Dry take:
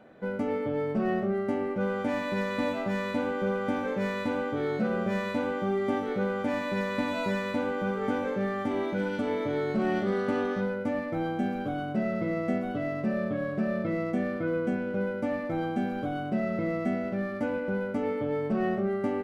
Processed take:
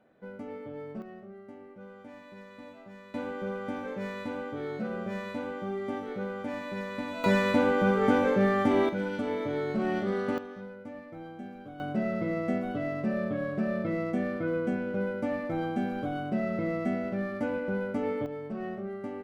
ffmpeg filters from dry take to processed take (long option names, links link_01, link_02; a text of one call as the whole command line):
ffmpeg -i in.wav -af "asetnsamples=nb_out_samples=441:pad=0,asendcmd='1.02 volume volume -18.5dB;3.14 volume volume -6dB;7.24 volume volume 5.5dB;8.89 volume volume -2dB;10.38 volume volume -13dB;11.8 volume volume -1dB;18.26 volume volume -8.5dB',volume=-11dB" out.wav